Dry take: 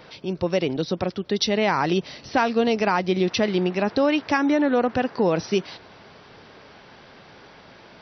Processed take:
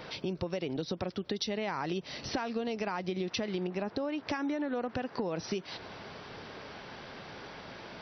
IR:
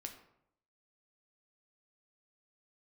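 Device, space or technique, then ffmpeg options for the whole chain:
serial compression, leveller first: -filter_complex "[0:a]acompressor=threshold=-23dB:ratio=2.5,acompressor=threshold=-34dB:ratio=4,asettb=1/sr,asplit=3[a][b][c];[a]atrim=end=3.674[d];[b]atrim=start=3.67:end=4.27,asetpts=PTS-STARTPTS,afade=t=in:d=0.004:c=qsin,afade=t=out:st=0.596:d=0.004:c=qsin,adynamicequalizer=threshold=0.00282:dfrequency=1500:dqfactor=0.7:tfrequency=1500:tqfactor=0.7:attack=5:release=100:ratio=0.375:range=3:mode=cutabove:tftype=highshelf[e];[c]atrim=start=4.266[f];[d][e]acrossfade=d=0.004:c1=hsin:c2=qsin[g];[g][f]acrossfade=d=0.004:c1=qsin:c2=hsin,volume=1.5dB"

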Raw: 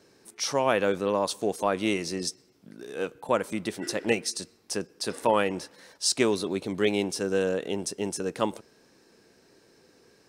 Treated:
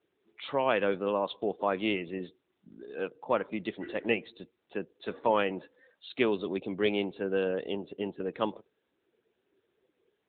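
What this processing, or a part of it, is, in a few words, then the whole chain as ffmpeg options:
mobile call with aggressive noise cancelling: -af "adynamicequalizer=threshold=0.00562:dfrequency=4900:dqfactor=0.94:tfrequency=4900:tqfactor=0.94:attack=5:release=100:ratio=0.375:range=2.5:mode=boostabove:tftype=bell,highpass=f=150:p=1,afftdn=nr=16:nf=-45,volume=-2.5dB" -ar 8000 -c:a libopencore_amrnb -b:a 10200

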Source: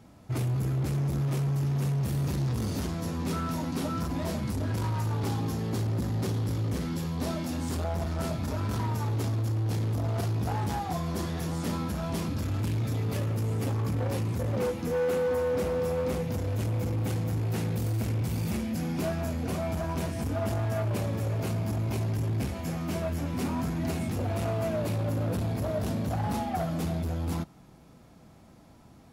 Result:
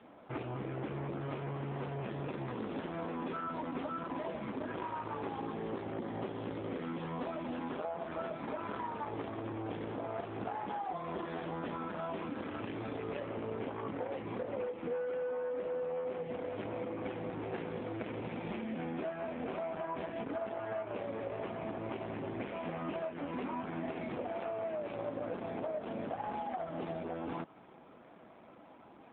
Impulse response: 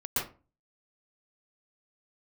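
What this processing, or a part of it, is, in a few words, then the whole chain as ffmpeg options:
voicemail: -af "highpass=370,lowpass=2.8k,acompressor=threshold=-40dB:ratio=8,volume=6dB" -ar 8000 -c:a libopencore_amrnb -b:a 7400

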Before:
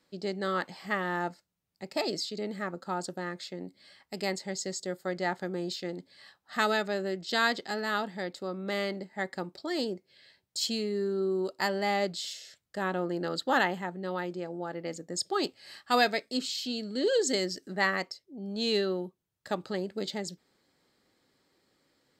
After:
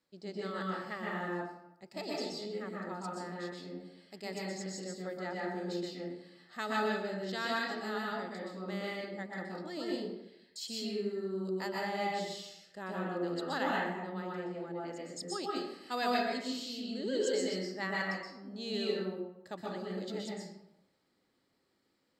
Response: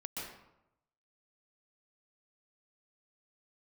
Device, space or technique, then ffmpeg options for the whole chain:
bathroom: -filter_complex "[1:a]atrim=start_sample=2205[a];[0:a][a]afir=irnorm=-1:irlink=0,volume=-6dB"

